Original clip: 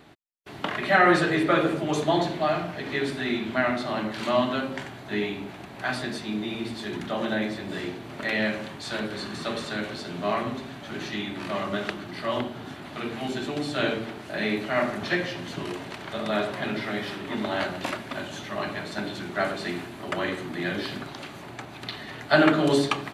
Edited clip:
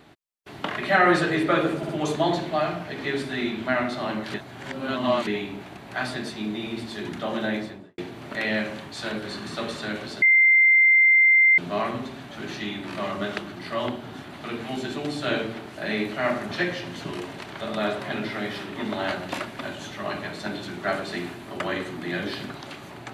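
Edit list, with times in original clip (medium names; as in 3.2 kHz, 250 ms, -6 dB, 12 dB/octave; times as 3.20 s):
1.77 s: stutter 0.06 s, 3 plays
4.22–5.15 s: reverse
7.44–7.86 s: studio fade out
10.10 s: add tone 2.09 kHz -13 dBFS 1.36 s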